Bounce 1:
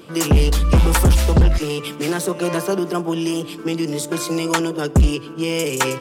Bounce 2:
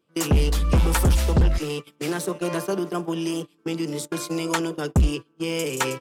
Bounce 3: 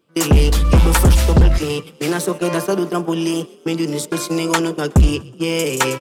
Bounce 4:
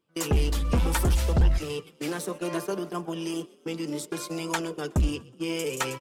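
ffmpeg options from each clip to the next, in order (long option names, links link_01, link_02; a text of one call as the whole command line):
ffmpeg -i in.wav -af "agate=range=-25dB:threshold=-24dB:ratio=16:detection=peak,volume=-5dB" out.wav
ffmpeg -i in.wav -filter_complex "[0:a]asplit=4[link_01][link_02][link_03][link_04];[link_02]adelay=123,afreqshift=37,volume=-23dB[link_05];[link_03]adelay=246,afreqshift=74,volume=-28.7dB[link_06];[link_04]adelay=369,afreqshift=111,volume=-34.4dB[link_07];[link_01][link_05][link_06][link_07]amix=inputs=4:normalize=0,volume=7dB" out.wav
ffmpeg -i in.wav -af "flanger=delay=0.9:depth=3.4:regen=56:speed=0.67:shape=triangular,volume=-7dB" out.wav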